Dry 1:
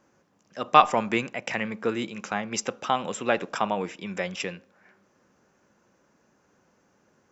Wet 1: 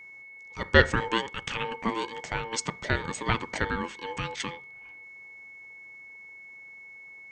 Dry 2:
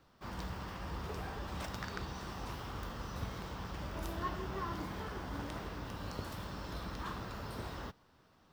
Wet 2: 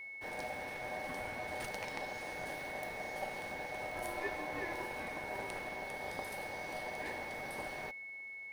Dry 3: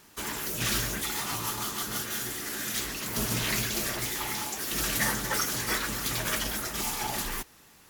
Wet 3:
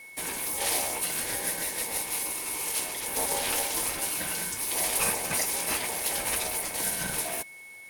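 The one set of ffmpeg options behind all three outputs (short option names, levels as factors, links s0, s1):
-af "aeval=exprs='val(0)*sin(2*PI*680*n/s)':c=same,aeval=exprs='val(0)+0.00501*sin(2*PI*2200*n/s)':c=same,superequalizer=10b=0.631:16b=2.82,volume=1.19"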